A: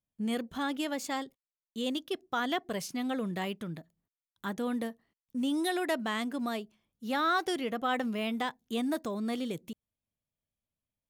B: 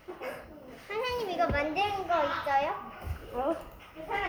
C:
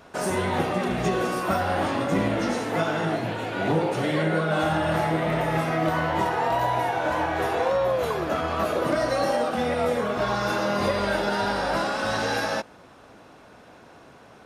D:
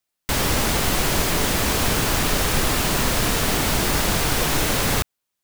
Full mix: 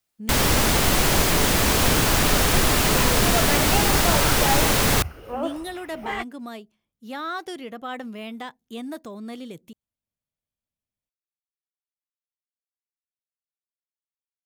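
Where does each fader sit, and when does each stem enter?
−2.5 dB, +2.0 dB, muted, +1.5 dB; 0.00 s, 1.95 s, muted, 0.00 s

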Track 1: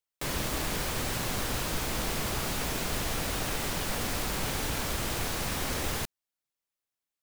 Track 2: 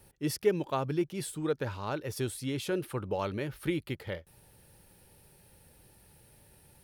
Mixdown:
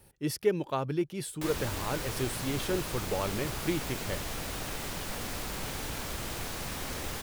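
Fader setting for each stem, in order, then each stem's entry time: −5.0, 0.0 decibels; 1.20, 0.00 seconds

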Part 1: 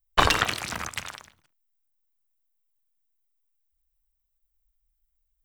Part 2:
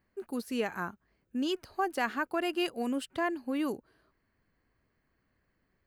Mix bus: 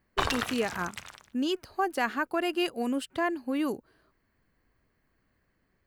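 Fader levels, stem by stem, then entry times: −8.5, +2.5 decibels; 0.00, 0.00 seconds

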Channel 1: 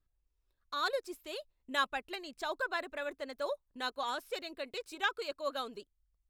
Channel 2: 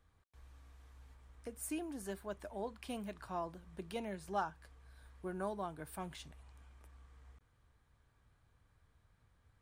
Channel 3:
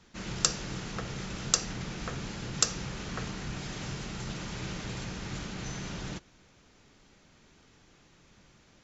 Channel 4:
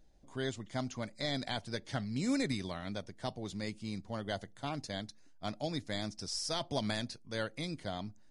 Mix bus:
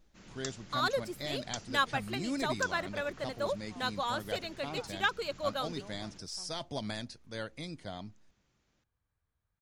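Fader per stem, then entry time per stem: +2.5, −13.5, −16.0, −3.0 decibels; 0.00, 0.40, 0.00, 0.00 seconds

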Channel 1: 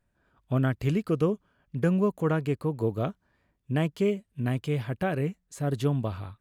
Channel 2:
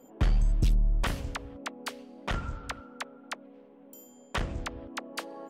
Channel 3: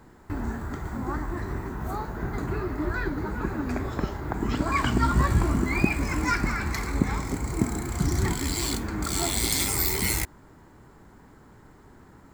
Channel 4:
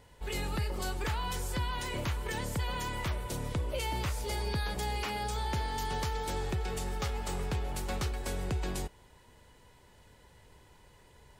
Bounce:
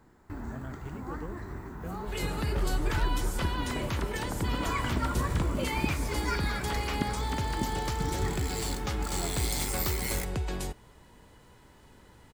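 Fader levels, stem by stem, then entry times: −17.5, −7.0, −8.0, +1.0 decibels; 0.00, 2.35, 0.00, 1.85 seconds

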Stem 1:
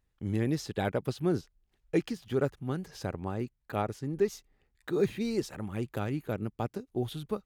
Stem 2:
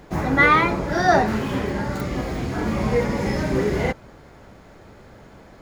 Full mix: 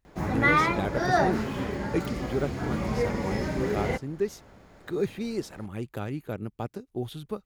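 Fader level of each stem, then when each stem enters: −0.5, −6.5 decibels; 0.00, 0.05 seconds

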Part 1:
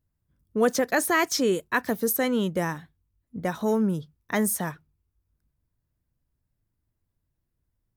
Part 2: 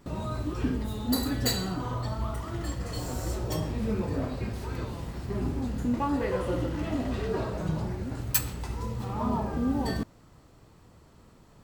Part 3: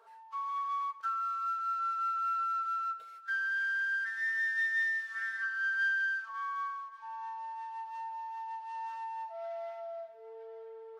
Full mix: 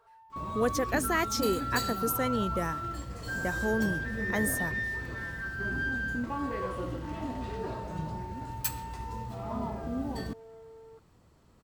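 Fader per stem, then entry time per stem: −6.0, −6.5, −3.0 decibels; 0.00, 0.30, 0.00 seconds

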